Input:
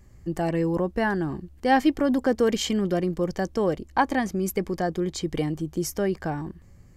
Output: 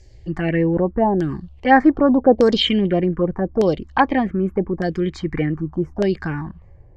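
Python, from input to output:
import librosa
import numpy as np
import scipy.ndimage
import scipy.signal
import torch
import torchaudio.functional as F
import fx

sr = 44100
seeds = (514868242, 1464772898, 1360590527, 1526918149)

y = fx.env_phaser(x, sr, low_hz=190.0, high_hz=3000.0, full_db=-17.0)
y = fx.filter_lfo_lowpass(y, sr, shape='saw_down', hz=0.83, low_hz=610.0, high_hz=5500.0, q=2.4)
y = F.gain(torch.from_numpy(y), 7.0).numpy()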